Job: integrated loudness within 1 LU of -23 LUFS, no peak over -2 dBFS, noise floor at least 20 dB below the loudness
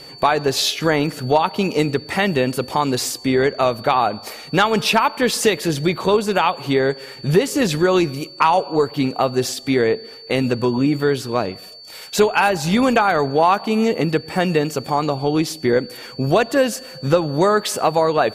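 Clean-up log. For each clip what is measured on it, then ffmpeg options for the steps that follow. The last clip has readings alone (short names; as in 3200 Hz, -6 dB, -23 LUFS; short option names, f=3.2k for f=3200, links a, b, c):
steady tone 4500 Hz; tone level -38 dBFS; loudness -19.0 LUFS; peak -3.5 dBFS; loudness target -23.0 LUFS
-> -af "bandreject=f=4.5k:w=30"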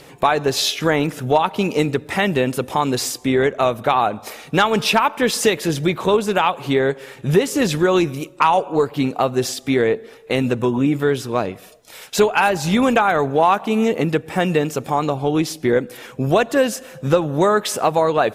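steady tone none; loudness -19.0 LUFS; peak -3.5 dBFS; loudness target -23.0 LUFS
-> -af "volume=-4dB"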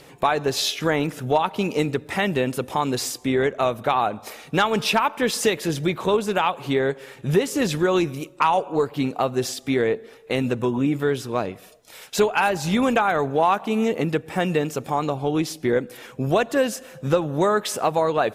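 loudness -23.0 LUFS; peak -7.5 dBFS; noise floor -47 dBFS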